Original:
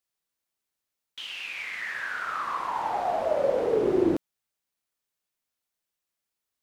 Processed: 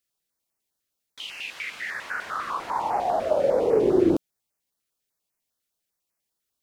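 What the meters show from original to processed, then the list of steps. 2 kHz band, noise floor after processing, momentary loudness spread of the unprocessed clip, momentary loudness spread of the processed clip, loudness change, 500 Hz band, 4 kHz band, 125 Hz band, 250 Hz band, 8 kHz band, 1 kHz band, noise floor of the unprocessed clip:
0.0 dB, −82 dBFS, 11 LU, 13 LU, +3.0 dB, +3.5 dB, +1.0 dB, +4.0 dB, +3.5 dB, can't be measured, +2.0 dB, below −85 dBFS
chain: notch on a step sequencer 10 Hz 890–3,500 Hz
level +4 dB

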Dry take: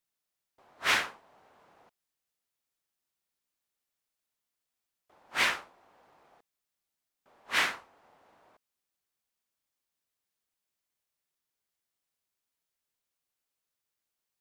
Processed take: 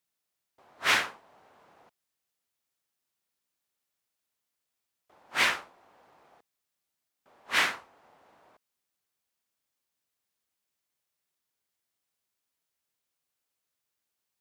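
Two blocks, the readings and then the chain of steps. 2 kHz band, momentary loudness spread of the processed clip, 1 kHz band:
+2.0 dB, 13 LU, +2.0 dB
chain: high-pass filter 51 Hz
level +2 dB

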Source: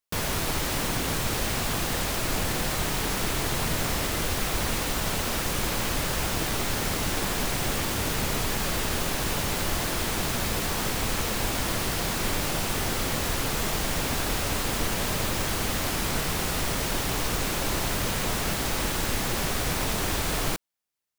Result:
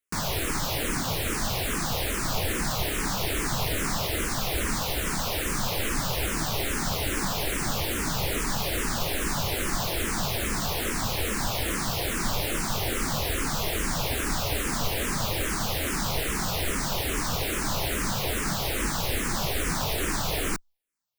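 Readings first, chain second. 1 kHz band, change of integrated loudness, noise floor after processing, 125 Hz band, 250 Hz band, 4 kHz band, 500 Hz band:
−0.5 dB, −0.5 dB, −30 dBFS, −0.5 dB, −0.5 dB, −0.5 dB, −0.5 dB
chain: frequency shifter mixed with the dry sound −2.4 Hz
level +2.5 dB

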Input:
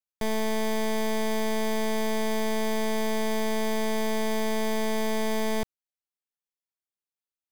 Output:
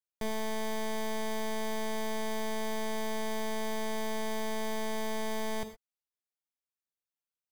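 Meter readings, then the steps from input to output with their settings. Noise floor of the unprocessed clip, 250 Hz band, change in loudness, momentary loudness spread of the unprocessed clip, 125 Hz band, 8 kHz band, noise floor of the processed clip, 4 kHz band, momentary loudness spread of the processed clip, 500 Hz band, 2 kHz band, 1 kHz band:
below −85 dBFS, −8.5 dB, −7.0 dB, 0 LU, can't be measured, −5.5 dB, below −85 dBFS, −6.0 dB, 0 LU, −7.5 dB, −6.0 dB, −5.0 dB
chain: reverb whose tail is shaped and stops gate 140 ms flat, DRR 8.5 dB
level −6 dB

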